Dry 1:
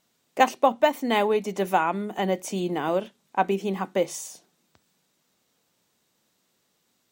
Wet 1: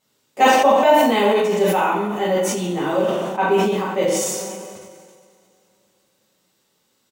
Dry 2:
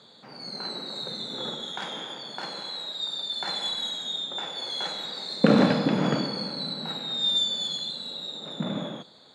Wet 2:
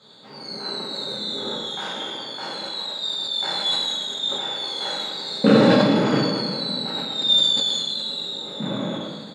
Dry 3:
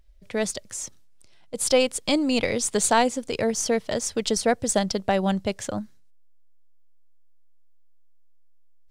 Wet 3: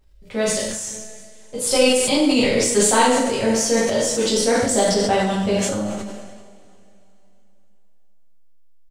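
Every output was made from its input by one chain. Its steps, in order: doubling 40 ms -10.5 dB; two-slope reverb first 0.67 s, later 3.2 s, from -18 dB, DRR -7.5 dB; decay stretcher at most 30 dB/s; trim -4 dB

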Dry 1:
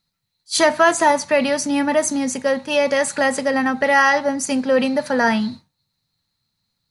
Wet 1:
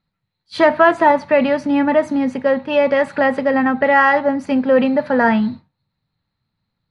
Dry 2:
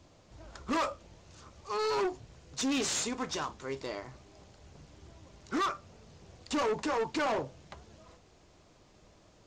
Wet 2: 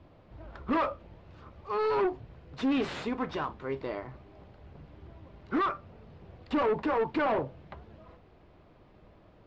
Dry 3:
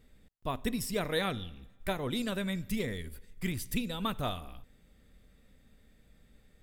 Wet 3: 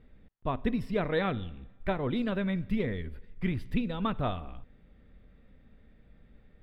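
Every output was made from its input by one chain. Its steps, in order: distance through air 420 m; trim +4.5 dB

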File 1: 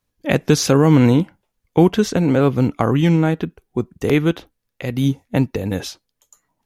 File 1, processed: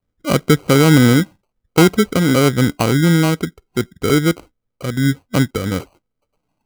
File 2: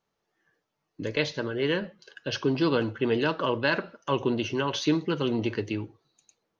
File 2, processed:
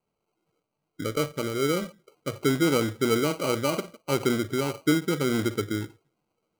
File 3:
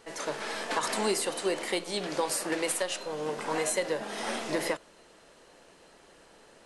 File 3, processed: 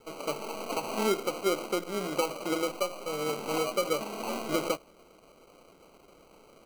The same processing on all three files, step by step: steep low-pass 880 Hz 72 dB/octave; sample-and-hold 25×; trim +2 dB

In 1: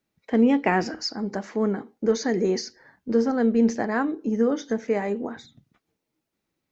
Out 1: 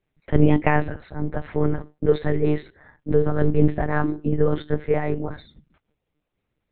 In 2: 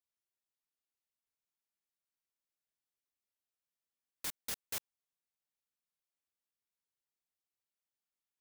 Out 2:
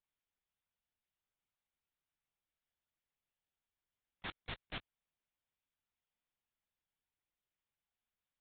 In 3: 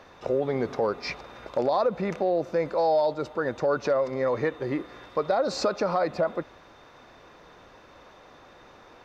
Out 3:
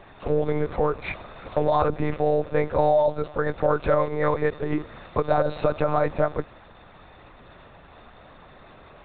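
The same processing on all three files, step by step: peaking EQ 160 Hz +4.5 dB 0.5 oct; monotone LPC vocoder at 8 kHz 150 Hz; trim +3 dB

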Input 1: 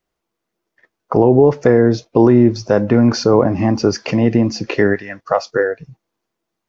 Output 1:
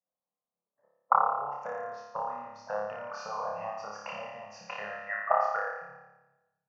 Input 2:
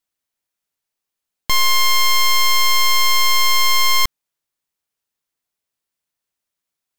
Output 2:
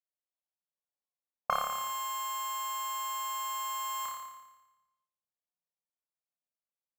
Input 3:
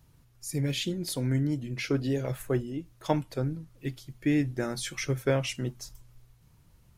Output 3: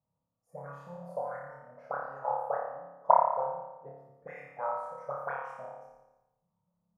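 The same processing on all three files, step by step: compression 4:1, threshold -14 dBFS; auto-wah 300–2800 Hz, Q 6.5, up, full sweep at -20 dBFS; FFT filter 130 Hz 0 dB, 190 Hz +5 dB, 340 Hz -28 dB, 510 Hz +8 dB, 790 Hz +12 dB, 1.2 kHz +11 dB, 2.2 kHz -16 dB, 3.4 kHz -24 dB, 5.8 kHz -10 dB, 15 kHz +4 dB; spectral noise reduction 9 dB; treble shelf 7 kHz +3.5 dB; flutter echo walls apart 4.9 m, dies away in 1 s; simulated room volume 400 m³, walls mixed, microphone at 0.33 m; trim +3.5 dB

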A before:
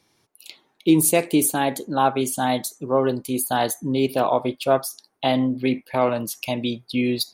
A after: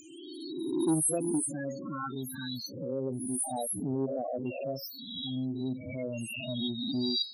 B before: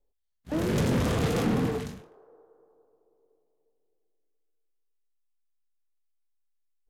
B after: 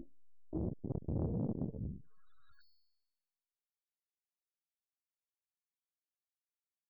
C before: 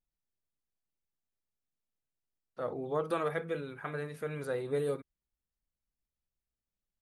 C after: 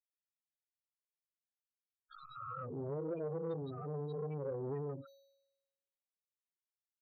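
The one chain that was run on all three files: reverse spectral sustain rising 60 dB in 1.20 s; bass shelf 110 Hz +10.5 dB; tape echo 103 ms, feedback 47%, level -22 dB, low-pass 4.3 kHz; in parallel at +1.5 dB: compression 5:1, threshold -29 dBFS; on the sum: bit crusher 7-bit; phase shifter stages 6, 0.33 Hz, lowest notch 630–2000 Hz; treble shelf 2.2 kHz +11.5 dB; feedback comb 550 Hz, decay 0.61 s, mix 70%; upward compressor, threshold -26 dBFS; loudest bins only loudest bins 8; transformer saturation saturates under 360 Hz; trim -4 dB

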